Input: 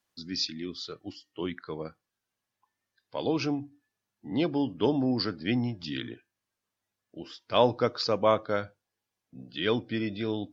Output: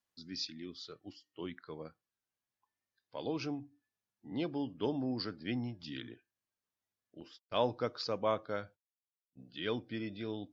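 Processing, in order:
0:07.20–0:09.45: noise gate −45 dBFS, range −31 dB
level −9 dB

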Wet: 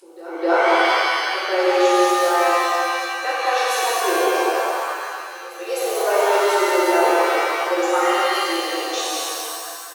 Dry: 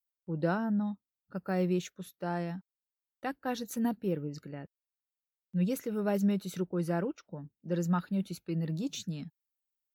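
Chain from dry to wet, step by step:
linear-phase brick-wall band-pass 320–12,000 Hz
echo ahead of the sound 256 ms −19 dB
upward compression, threshold −50 dBFS
on a send: single-tap delay 187 ms −4.5 dB
on the sum: reverb with rising layers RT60 2 s, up +7 semitones, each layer −2 dB, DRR −7.5 dB
level +8 dB

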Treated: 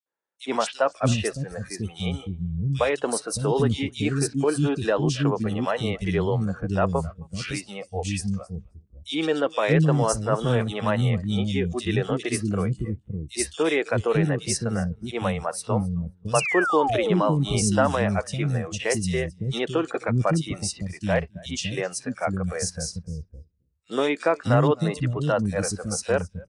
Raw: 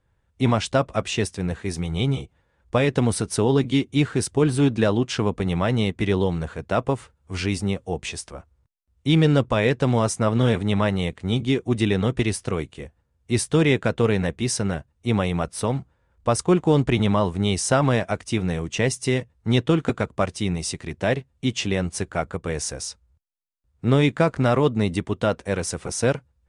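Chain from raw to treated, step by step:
on a send: repeating echo 265 ms, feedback 18%, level −21 dB
on the sum: noise reduction from a noise print of the clip's start 13 dB
sound drawn into the spectrogram fall, 0:16.34–0:17.25, 240–2,900 Hz −24 dBFS
three-band delay without the direct sound highs, mids, lows 60/620 ms, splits 290/3,100 Hz

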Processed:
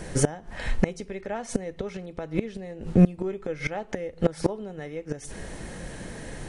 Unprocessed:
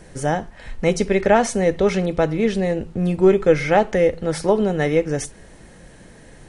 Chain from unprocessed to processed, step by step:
gate with flip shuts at −14 dBFS, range −24 dB
level +6.5 dB

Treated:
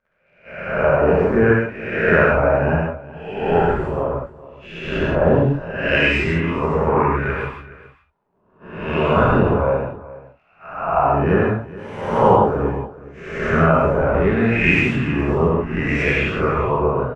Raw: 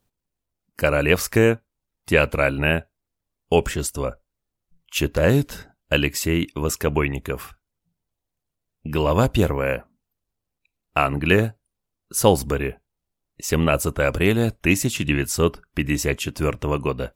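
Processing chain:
peak hold with a rise ahead of every peak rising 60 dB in 0.95 s
noise gate −39 dBFS, range −11 dB
in parallel at −8 dB: sample-rate reduction 8,000 Hz, jitter 20%
on the sum: surface crackle 45 per second −43 dBFS
auto-filter low-pass sine 0.7 Hz 850–2,300 Hz
on a send: single-tap delay 420 ms −18 dB
on the sum: reverb whose tail is shaped and stops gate 190 ms flat, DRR −4 dB
level −8 dB

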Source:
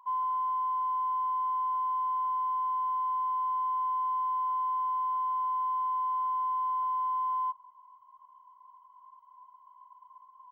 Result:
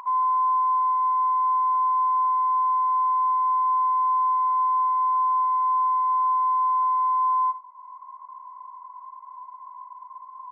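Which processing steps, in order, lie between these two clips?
upward compression, threshold −41 dBFS
linear-phase brick-wall band-pass 260–2,400 Hz
convolution reverb, pre-delay 72 ms, DRR 10.5 dB
level +7.5 dB

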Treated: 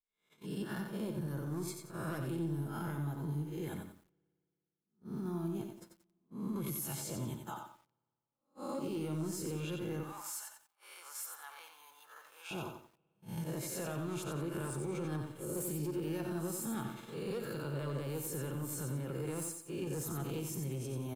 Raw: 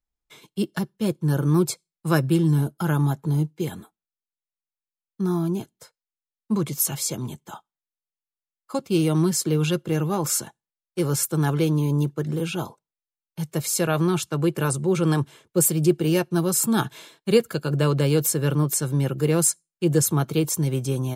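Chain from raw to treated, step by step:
peak hold with a rise ahead of every peak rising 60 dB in 0.45 s
soft clipping −14 dBFS, distortion −17 dB
spring reverb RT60 2.2 s, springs 57 ms, chirp 75 ms, DRR 17.5 dB
brickwall limiter −23 dBFS, peak gain reduction 9.5 dB
downward compressor 2.5 to 1, threshold −51 dBFS, peak gain reduction 16 dB
parametric band 5,300 Hz −5 dB 1.8 octaves
noise gate −49 dBFS, range −28 dB
0:10.03–0:12.51: high-pass filter 910 Hz 24 dB per octave
slap from a distant wall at 16 metres, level −16 dB
feedback echo at a low word length 90 ms, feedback 35%, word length 12 bits, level −5.5 dB
level +5.5 dB

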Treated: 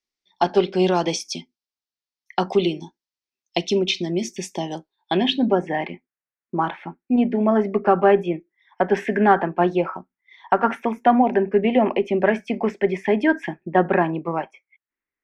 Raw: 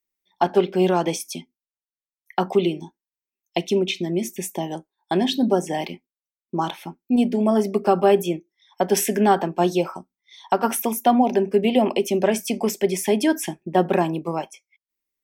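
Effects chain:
low-pass filter sweep 5,000 Hz → 1,800 Hz, 0:04.72–0:05.73
harmonic generator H 6 −43 dB, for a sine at −2.5 dBFS

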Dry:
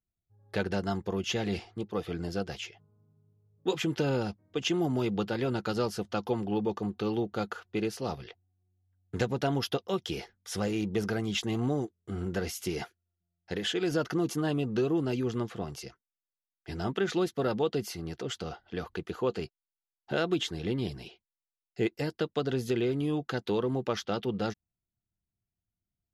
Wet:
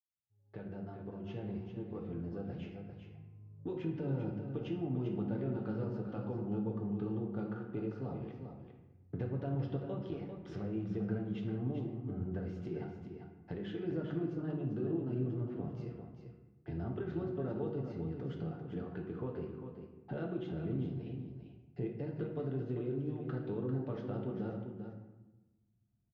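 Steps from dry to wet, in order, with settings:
fade in at the beginning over 3.03 s
high-pass filter 82 Hz
low-shelf EQ 340 Hz +9.5 dB
downward compressor 2.5 to 1, threshold −46 dBFS, peak gain reduction 18 dB
head-to-tape spacing loss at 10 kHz 43 dB
single-tap delay 396 ms −8 dB
convolution reverb RT60 1.1 s, pre-delay 7 ms, DRR 0.5 dB
level +1 dB

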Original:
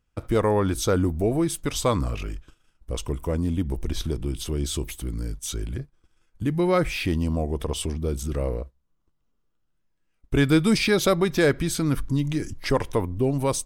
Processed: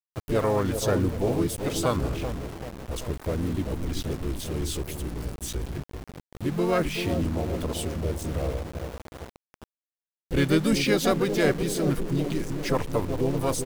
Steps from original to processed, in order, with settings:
bucket-brigade delay 386 ms, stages 2,048, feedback 57%, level −7 dB
pitch-shifted copies added −4 semitones −16 dB, +4 semitones −6 dB
centre clipping without the shift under −31 dBFS
level −4 dB

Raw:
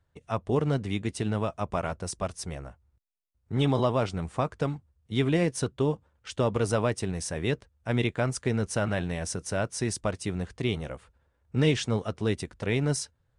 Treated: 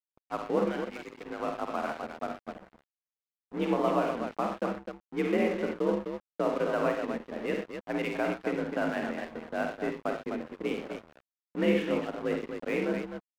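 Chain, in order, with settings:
single-sideband voice off tune +51 Hz 160–2,700 Hz
0:00.65–0:01.40: spectral tilt +4.5 dB per octave
low-pass that shuts in the quiet parts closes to 480 Hz, open at −22 dBFS
multi-tap delay 49/69/94/123/255 ms −5.5/−8/−10.5/−11.5/−6 dB
dead-zone distortion −40 dBFS
level −2 dB

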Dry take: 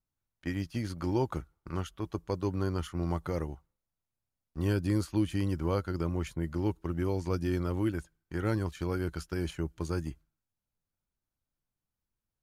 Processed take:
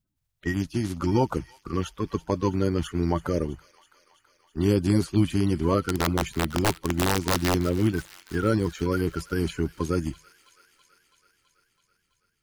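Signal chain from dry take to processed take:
spectral magnitudes quantised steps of 30 dB
0:05.81–0:07.55: wrap-around overflow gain 23 dB
delay with a high-pass on its return 329 ms, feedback 70%, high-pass 1,700 Hz, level −16 dB
level +7.5 dB

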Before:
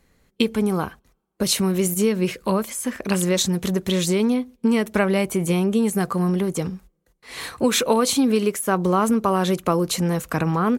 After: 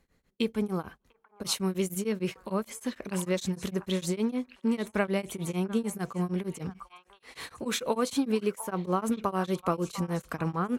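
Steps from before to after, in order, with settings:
high-shelf EQ 7,200 Hz −4.5 dB
echo through a band-pass that steps 698 ms, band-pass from 1,100 Hz, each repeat 1.4 octaves, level −10 dB
tremolo along a rectified sine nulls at 6.6 Hz
level −6.5 dB

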